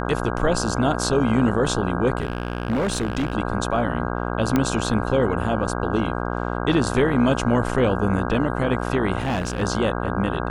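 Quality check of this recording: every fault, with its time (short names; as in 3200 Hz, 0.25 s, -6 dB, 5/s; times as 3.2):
buzz 60 Hz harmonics 27 -26 dBFS
2.18–3.35 clipped -18.5 dBFS
4.56 pop -7 dBFS
9.18–9.63 clipped -19 dBFS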